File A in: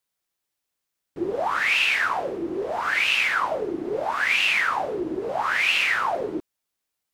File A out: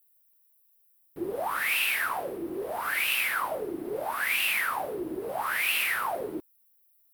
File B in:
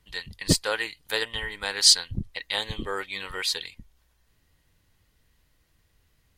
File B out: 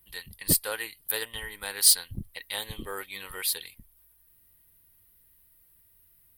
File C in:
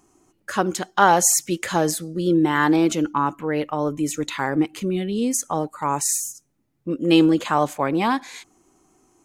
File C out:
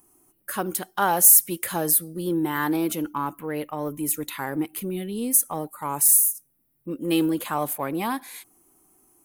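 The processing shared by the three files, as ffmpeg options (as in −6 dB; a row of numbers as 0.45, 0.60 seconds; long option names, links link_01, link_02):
-filter_complex "[0:a]asplit=2[link_01][link_02];[link_02]asoftclip=type=tanh:threshold=-18.5dB,volume=-10dB[link_03];[link_01][link_03]amix=inputs=2:normalize=0,aexciter=amount=10.7:drive=7.2:freq=9600,volume=-8dB"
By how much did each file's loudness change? −5.5, −1.5, −0.5 LU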